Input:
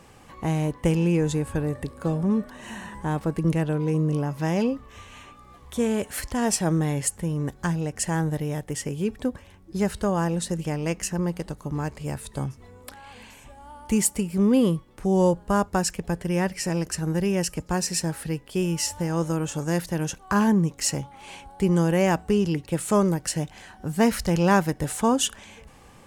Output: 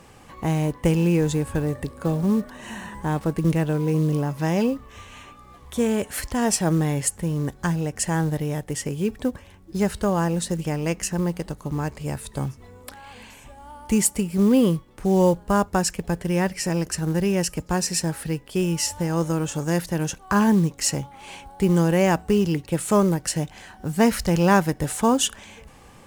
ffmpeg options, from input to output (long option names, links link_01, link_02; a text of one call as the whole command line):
ffmpeg -i in.wav -af "acrusher=bits=7:mode=log:mix=0:aa=0.000001,volume=2dB" out.wav